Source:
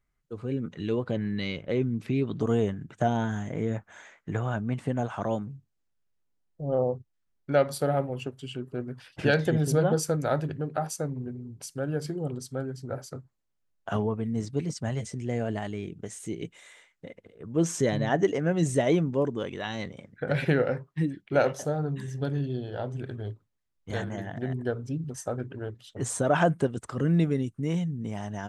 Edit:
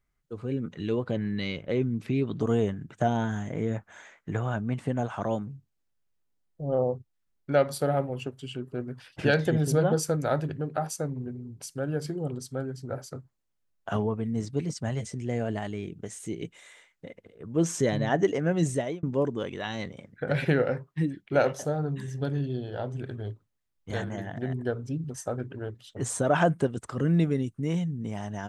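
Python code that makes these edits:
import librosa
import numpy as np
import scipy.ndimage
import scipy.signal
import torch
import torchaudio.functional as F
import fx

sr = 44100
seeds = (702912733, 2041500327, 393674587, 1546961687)

y = fx.edit(x, sr, fx.fade_out_span(start_s=18.65, length_s=0.38), tone=tone)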